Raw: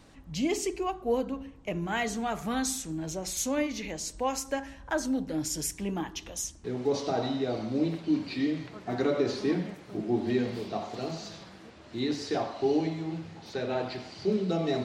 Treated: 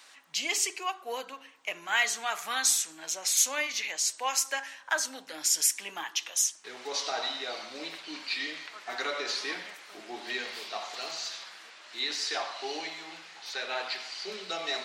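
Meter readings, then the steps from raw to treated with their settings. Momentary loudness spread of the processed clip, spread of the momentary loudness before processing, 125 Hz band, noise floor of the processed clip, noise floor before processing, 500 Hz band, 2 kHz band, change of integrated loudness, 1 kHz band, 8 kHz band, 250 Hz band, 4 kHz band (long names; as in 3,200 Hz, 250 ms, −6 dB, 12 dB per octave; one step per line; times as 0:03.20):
14 LU, 9 LU, below −25 dB, −53 dBFS, −50 dBFS, −9.5 dB, +7.0 dB, +1.0 dB, −0.5 dB, +8.5 dB, −19.0 dB, +8.5 dB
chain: high-pass filter 1,400 Hz 12 dB per octave
level +8.5 dB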